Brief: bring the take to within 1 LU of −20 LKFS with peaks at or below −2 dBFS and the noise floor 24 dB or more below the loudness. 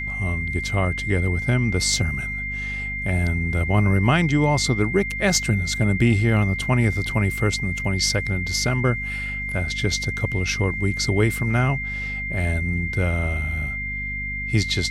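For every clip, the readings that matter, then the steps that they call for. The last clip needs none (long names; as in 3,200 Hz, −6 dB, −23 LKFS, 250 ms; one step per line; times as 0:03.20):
mains hum 50 Hz; hum harmonics up to 250 Hz; level of the hum −31 dBFS; interfering tone 2,100 Hz; level of the tone −27 dBFS; integrated loudness −22.0 LKFS; sample peak −6.5 dBFS; target loudness −20.0 LKFS
→ mains-hum notches 50/100/150/200/250 Hz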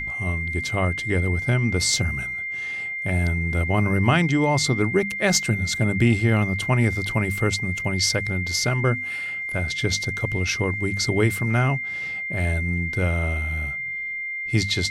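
mains hum none found; interfering tone 2,100 Hz; level of the tone −27 dBFS
→ notch filter 2,100 Hz, Q 30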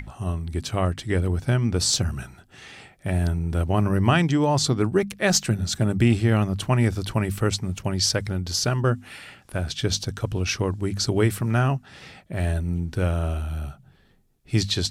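interfering tone none found; integrated loudness −24.0 LKFS; sample peak −7.0 dBFS; target loudness −20.0 LKFS
→ level +4 dB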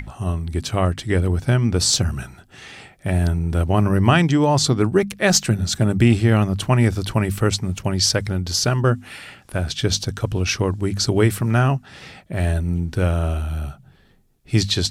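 integrated loudness −20.0 LKFS; sample peak −3.0 dBFS; background noise floor −53 dBFS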